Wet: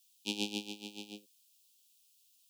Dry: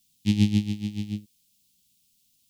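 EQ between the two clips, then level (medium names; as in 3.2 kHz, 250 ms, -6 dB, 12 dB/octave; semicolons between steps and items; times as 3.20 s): Chebyshev band-stop 1.1–2.4 kHz, order 5; dynamic bell 630 Hz, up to -5 dB, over -55 dBFS, Q 7; ladder high-pass 430 Hz, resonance 50%; +8.5 dB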